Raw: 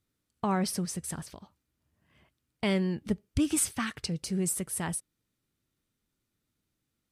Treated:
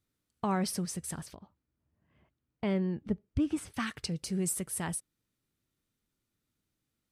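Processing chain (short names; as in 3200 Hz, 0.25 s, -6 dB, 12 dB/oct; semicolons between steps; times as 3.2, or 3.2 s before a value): 1.35–3.74 LPF 1100 Hz 6 dB/oct; gain -2 dB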